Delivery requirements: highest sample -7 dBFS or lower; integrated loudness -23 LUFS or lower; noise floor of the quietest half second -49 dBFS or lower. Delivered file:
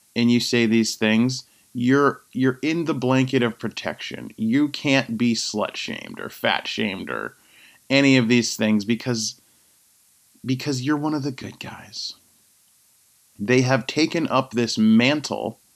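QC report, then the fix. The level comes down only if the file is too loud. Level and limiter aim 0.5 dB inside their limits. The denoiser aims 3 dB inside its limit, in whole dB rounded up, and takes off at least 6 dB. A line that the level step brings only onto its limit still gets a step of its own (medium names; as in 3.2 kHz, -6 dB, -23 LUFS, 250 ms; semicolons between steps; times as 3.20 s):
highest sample -4.0 dBFS: fail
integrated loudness -21.5 LUFS: fail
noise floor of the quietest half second -59 dBFS: pass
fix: trim -2 dB; peak limiter -7.5 dBFS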